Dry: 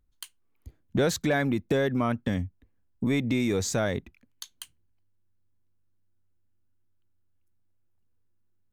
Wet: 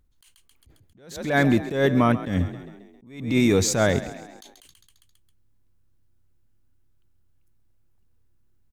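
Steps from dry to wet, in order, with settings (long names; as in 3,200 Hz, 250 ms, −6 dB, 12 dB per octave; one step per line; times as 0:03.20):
echo with shifted repeats 134 ms, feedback 53%, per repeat +37 Hz, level −15.5 dB
level that may rise only so fast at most 100 dB per second
level +7.5 dB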